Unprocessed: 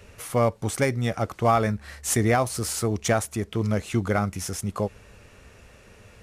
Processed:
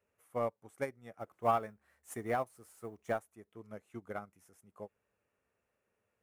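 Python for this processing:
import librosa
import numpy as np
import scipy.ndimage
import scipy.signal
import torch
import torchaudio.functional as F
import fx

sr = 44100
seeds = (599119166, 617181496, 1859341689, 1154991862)

y = fx.law_mismatch(x, sr, coded='mu', at=(1.18, 3.22))
y = fx.highpass(y, sr, hz=410.0, slope=6)
y = fx.peak_eq(y, sr, hz=4600.0, db=-14.0, octaves=1.7)
y = 10.0 ** (-12.0 / 20.0) * np.tanh(y / 10.0 ** (-12.0 / 20.0))
y = fx.upward_expand(y, sr, threshold_db=-35.0, expansion=2.5)
y = y * 10.0 ** (-4.0 / 20.0)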